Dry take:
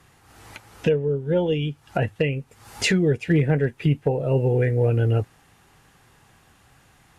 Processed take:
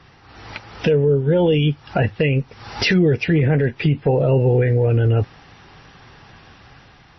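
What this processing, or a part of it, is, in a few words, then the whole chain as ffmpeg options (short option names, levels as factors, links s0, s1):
low-bitrate web radio: -af "dynaudnorm=f=250:g=5:m=1.58,alimiter=limit=0.158:level=0:latency=1:release=42,volume=2.37" -ar 22050 -c:a libmp3lame -b:a 24k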